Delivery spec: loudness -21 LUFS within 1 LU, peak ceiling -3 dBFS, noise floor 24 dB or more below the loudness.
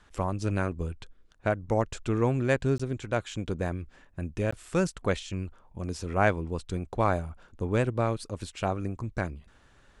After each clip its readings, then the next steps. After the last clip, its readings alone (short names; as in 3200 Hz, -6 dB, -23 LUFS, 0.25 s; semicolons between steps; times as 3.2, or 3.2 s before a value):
dropouts 2; longest dropout 15 ms; loudness -30.5 LUFS; peak -10.5 dBFS; loudness target -21.0 LUFS
-> interpolate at 2.78/4.51, 15 ms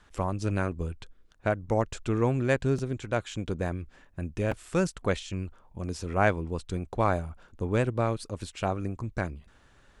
dropouts 0; loudness -30.5 LUFS; peak -10.5 dBFS; loudness target -21.0 LUFS
-> gain +9.5 dB; limiter -3 dBFS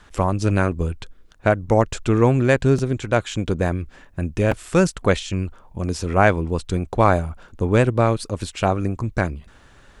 loudness -21.0 LUFS; peak -3.0 dBFS; noise floor -50 dBFS